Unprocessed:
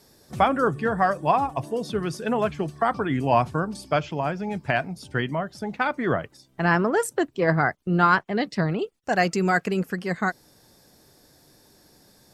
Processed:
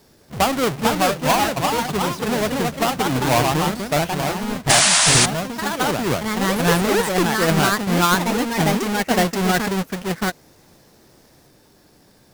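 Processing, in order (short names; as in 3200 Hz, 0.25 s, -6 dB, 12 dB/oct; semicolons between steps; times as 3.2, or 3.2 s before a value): half-waves squared off; echoes that change speed 0.49 s, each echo +2 st, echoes 2; painted sound noise, 4.69–5.26, 560–10000 Hz -13 dBFS; gain -2 dB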